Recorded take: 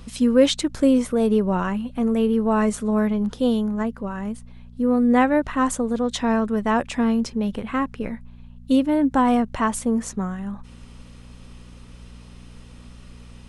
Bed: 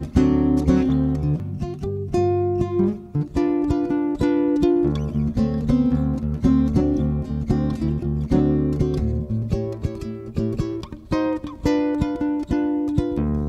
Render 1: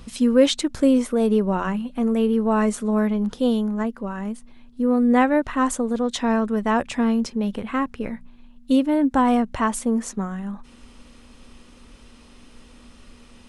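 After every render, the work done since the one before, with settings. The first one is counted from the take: de-hum 60 Hz, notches 3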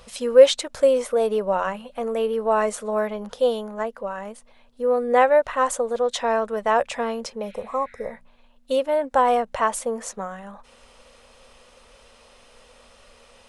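7.45–8.07 spectral repair 1300–5000 Hz both; resonant low shelf 400 Hz -9.5 dB, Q 3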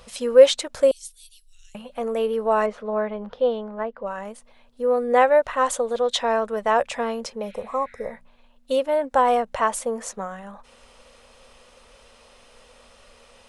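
0.91–1.75 inverse Chebyshev band-stop 160–1100 Hz, stop band 70 dB; 2.66–4.06 air absorption 290 m; 5.64–6.19 bell 3600 Hz +6.5 dB 0.75 oct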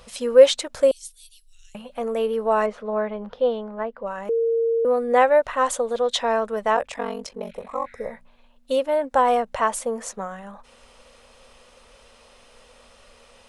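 4.29–4.85 bleep 459 Hz -18 dBFS; 6.75–7.86 ring modulator 23 Hz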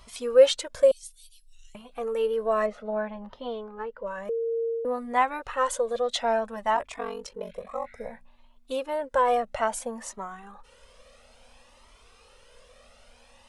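cascading flanger rising 0.59 Hz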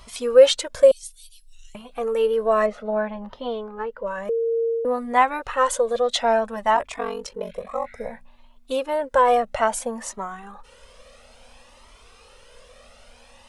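gain +5.5 dB; limiter -3 dBFS, peak gain reduction 2 dB

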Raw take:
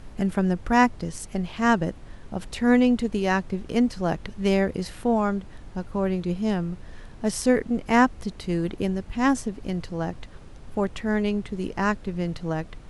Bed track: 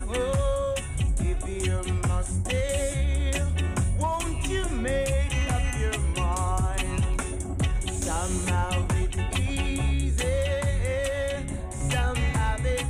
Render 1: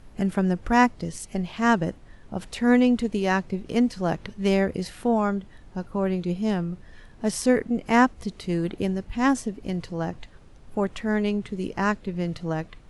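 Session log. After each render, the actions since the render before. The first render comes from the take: noise print and reduce 6 dB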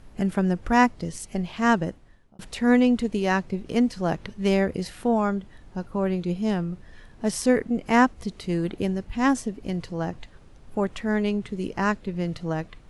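1.75–2.39 fade out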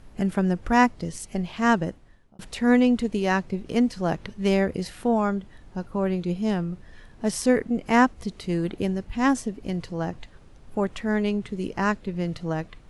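nothing audible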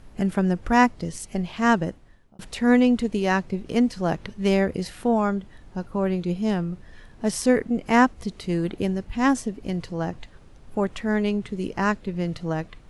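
gain +1 dB

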